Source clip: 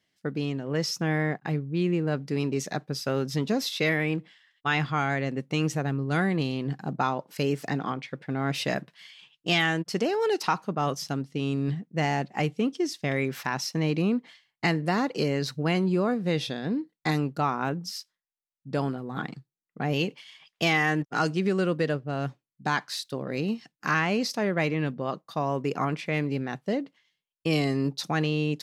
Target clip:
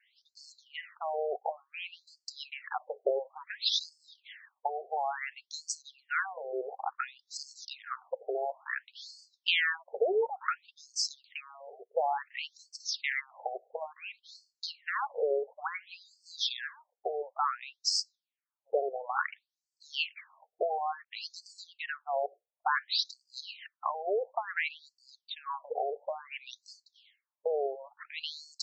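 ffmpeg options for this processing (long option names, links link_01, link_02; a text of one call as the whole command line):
ffmpeg -i in.wav -filter_complex "[0:a]acrossover=split=190[link_01][link_02];[link_02]acompressor=threshold=-32dB:ratio=5[link_03];[link_01][link_03]amix=inputs=2:normalize=0,afftfilt=real='re*between(b*sr/1024,540*pow(6100/540,0.5+0.5*sin(2*PI*0.57*pts/sr))/1.41,540*pow(6100/540,0.5+0.5*sin(2*PI*0.57*pts/sr))*1.41)':imag='im*between(b*sr/1024,540*pow(6100/540,0.5+0.5*sin(2*PI*0.57*pts/sr))/1.41,540*pow(6100/540,0.5+0.5*sin(2*PI*0.57*pts/sr))*1.41)':win_size=1024:overlap=0.75,volume=9dB" out.wav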